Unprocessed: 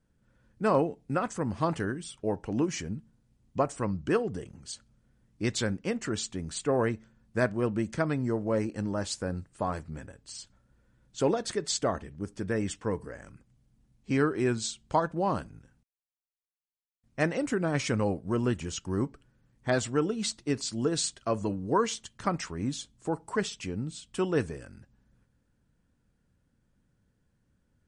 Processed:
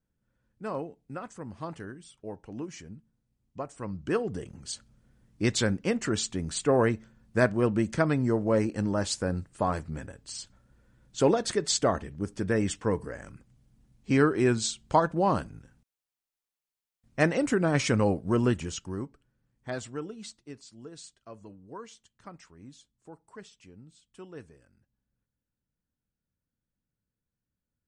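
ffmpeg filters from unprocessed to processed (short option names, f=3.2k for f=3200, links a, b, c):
-af "volume=3.5dB,afade=t=in:st=3.71:d=0.97:silence=0.223872,afade=t=out:st=18.44:d=0.62:silence=0.266073,afade=t=out:st=19.83:d=0.82:silence=0.354813"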